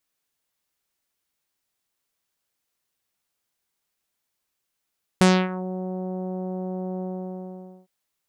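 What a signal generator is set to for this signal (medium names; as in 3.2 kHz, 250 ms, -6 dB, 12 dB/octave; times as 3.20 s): synth note saw F#3 24 dB/octave, low-pass 720 Hz, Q 1.2, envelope 4 oct, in 0.42 s, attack 1.2 ms, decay 0.27 s, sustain -16.5 dB, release 0.86 s, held 1.80 s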